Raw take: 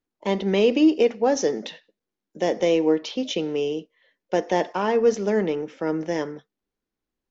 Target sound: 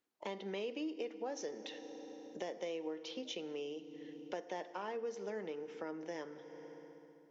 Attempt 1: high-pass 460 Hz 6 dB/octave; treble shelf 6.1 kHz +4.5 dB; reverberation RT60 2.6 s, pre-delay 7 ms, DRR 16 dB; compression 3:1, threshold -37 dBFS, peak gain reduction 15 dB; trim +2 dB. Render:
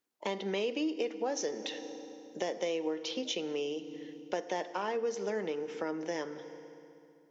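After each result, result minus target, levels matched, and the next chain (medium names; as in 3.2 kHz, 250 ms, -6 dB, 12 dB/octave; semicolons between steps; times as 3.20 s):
compression: peak gain reduction -7.5 dB; 8 kHz band +3.0 dB
high-pass 460 Hz 6 dB/octave; treble shelf 6.1 kHz +4.5 dB; reverberation RT60 2.6 s, pre-delay 7 ms, DRR 16 dB; compression 3:1, threshold -48.5 dBFS, peak gain reduction 22.5 dB; trim +2 dB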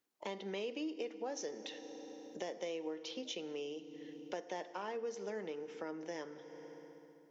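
8 kHz band +3.0 dB
high-pass 460 Hz 6 dB/octave; treble shelf 6.1 kHz -3 dB; reverberation RT60 2.6 s, pre-delay 7 ms, DRR 16 dB; compression 3:1, threshold -48.5 dBFS, peak gain reduction 22.5 dB; trim +2 dB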